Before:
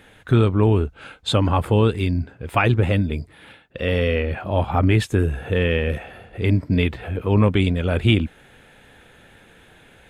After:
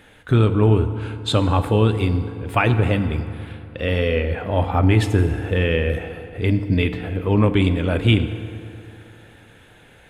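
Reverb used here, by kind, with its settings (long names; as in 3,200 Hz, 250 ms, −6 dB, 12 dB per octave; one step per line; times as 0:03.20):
feedback delay network reverb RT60 2.7 s, high-frequency decay 0.6×, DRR 9 dB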